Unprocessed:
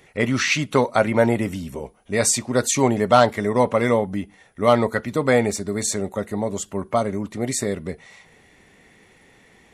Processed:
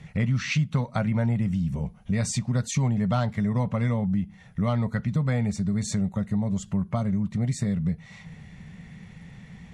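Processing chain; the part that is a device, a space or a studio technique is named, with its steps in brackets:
jukebox (low-pass filter 6,900 Hz 12 dB per octave; low shelf with overshoot 240 Hz +12 dB, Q 3; downward compressor 3 to 1, threshold −26 dBFS, peak gain reduction 15.5 dB)

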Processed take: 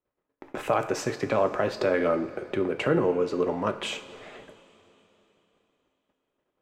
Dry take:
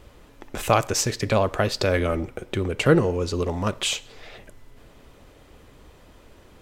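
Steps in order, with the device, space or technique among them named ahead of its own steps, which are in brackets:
DJ mixer with the lows and highs turned down (three-way crossover with the lows and the highs turned down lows −18 dB, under 180 Hz, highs −13 dB, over 2,300 Hz; brickwall limiter −13 dBFS, peak gain reduction 7.5 dB)
noise gate −50 dBFS, range −35 dB
high-shelf EQ 9,500 Hz −5.5 dB
coupled-rooms reverb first 0.39 s, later 3.5 s, from −16 dB, DRR 7 dB

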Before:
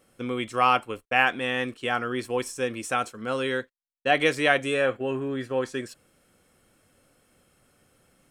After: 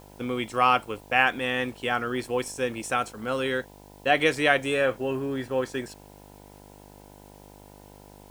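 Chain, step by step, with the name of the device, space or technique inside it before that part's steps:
video cassette with head-switching buzz (hum with harmonics 50 Hz, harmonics 20, −50 dBFS −2 dB per octave; white noise bed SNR 31 dB)

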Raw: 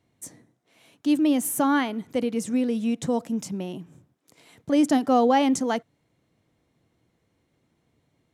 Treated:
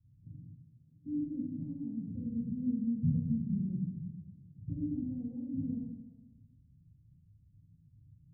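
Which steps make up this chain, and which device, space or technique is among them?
club heard from the street (brickwall limiter −20 dBFS, peak gain reduction 11 dB; low-pass filter 140 Hz 24 dB per octave; convolution reverb RT60 1.2 s, pre-delay 8 ms, DRR −5 dB)
level +6 dB

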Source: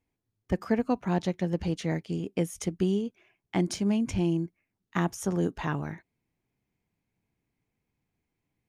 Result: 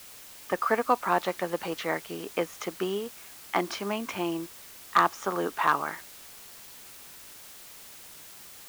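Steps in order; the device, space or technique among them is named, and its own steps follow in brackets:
drive-through speaker (band-pass filter 550–3,500 Hz; parametric band 1,200 Hz +11 dB 0.56 octaves; hard clipping −18 dBFS, distortion −19 dB; white noise bed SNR 16 dB)
level +6.5 dB

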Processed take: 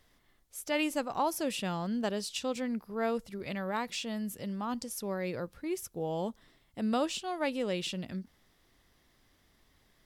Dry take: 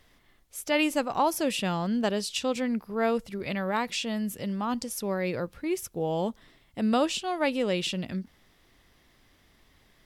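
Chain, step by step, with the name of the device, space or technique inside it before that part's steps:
exciter from parts (in parallel at −10 dB: high-pass filter 2,300 Hz 24 dB per octave + soft clipping −37 dBFS, distortion −6 dB)
on the sum: level −5.5 dB

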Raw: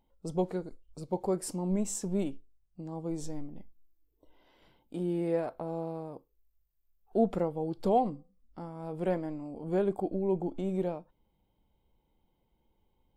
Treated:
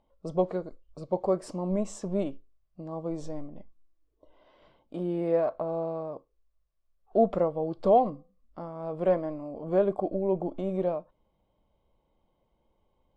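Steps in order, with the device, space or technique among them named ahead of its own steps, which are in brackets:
inside a cardboard box (low-pass filter 5,000 Hz 12 dB per octave; hollow resonant body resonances 610/1,100 Hz, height 11 dB, ringing for 20 ms)

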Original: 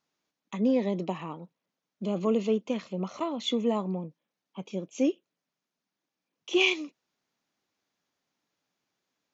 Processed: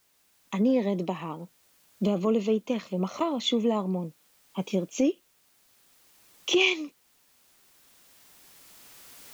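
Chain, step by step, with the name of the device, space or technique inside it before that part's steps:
cheap recorder with automatic gain (white noise bed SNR 37 dB; camcorder AGC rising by 7.6 dB per second)
level +1 dB

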